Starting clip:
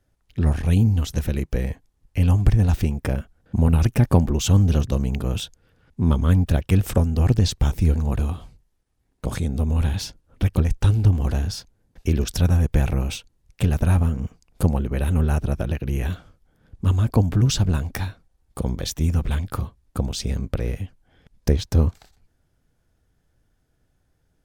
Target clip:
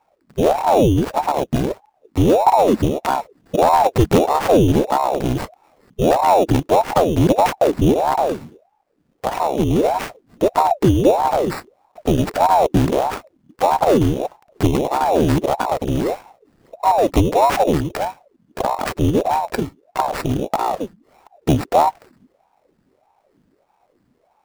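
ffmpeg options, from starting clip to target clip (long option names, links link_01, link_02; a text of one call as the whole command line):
ffmpeg -i in.wav -af "acrusher=samples=14:mix=1:aa=0.000001,acontrast=89,aeval=exprs='val(0)*sin(2*PI*520*n/s+520*0.65/1.6*sin(2*PI*1.6*n/s))':channel_layout=same" out.wav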